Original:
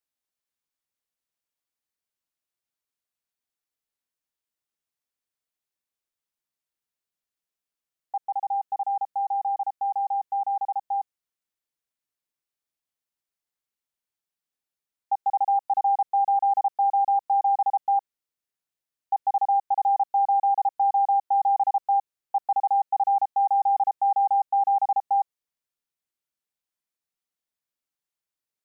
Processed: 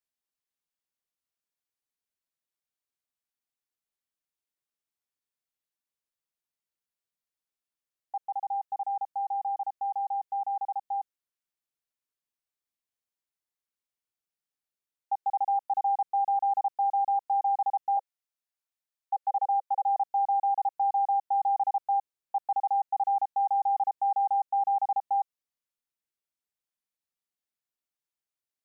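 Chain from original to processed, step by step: 17.97–19.96 steep high-pass 520 Hz 96 dB/oct; gain -4.5 dB

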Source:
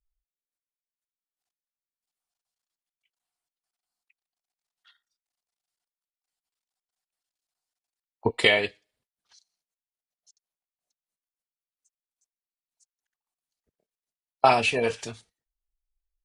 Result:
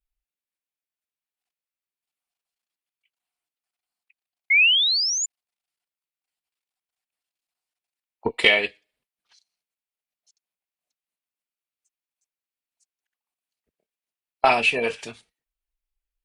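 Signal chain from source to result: added harmonics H 2 -19 dB, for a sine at -4 dBFS; painted sound rise, 4.5–5.26, 2100–7200 Hz -21 dBFS; fifteen-band EQ 100 Hz -10 dB, 2500 Hz +6 dB, 6300 Hz -4 dB

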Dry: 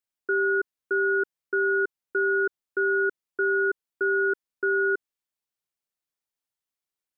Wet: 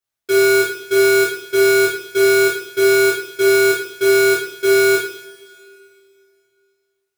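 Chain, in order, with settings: half-waves squared off; two-slope reverb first 0.6 s, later 2.7 s, from -21 dB, DRR -9.5 dB; gain -5 dB

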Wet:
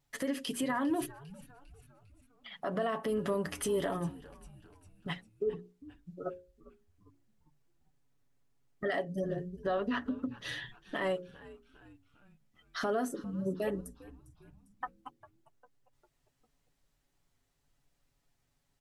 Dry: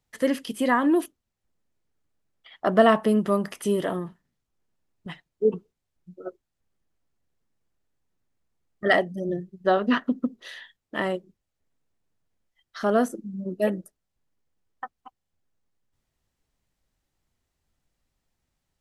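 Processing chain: vibrato 1.4 Hz 20 cents; comb 7.1 ms, depth 51%; compressor 4:1, threshold -25 dBFS, peak gain reduction 12.5 dB; limiter -24 dBFS, peak gain reduction 10 dB; notches 60/120/180/240/300/360/420/480/540 Hz; frequency-shifting echo 0.401 s, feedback 51%, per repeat -130 Hz, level -19 dB

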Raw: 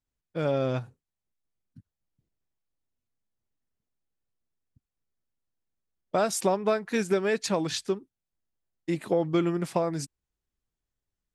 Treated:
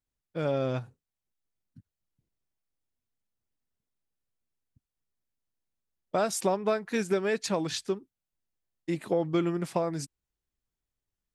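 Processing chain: gain -2 dB

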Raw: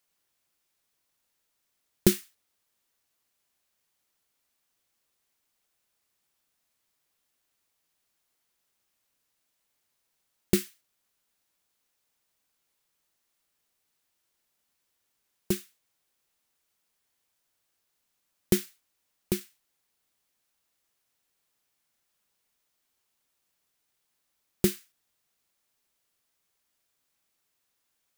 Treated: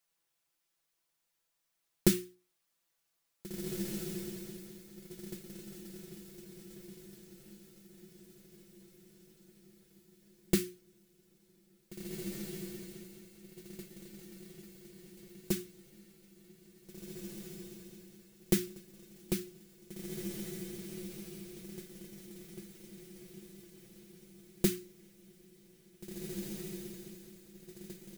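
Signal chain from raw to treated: notches 60/120/180/240/300/360 Hz; comb 6 ms, depth 75%; on a send: diffused feedback echo 1.874 s, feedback 46%, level -5 dB; on the sum: gain -6 dB

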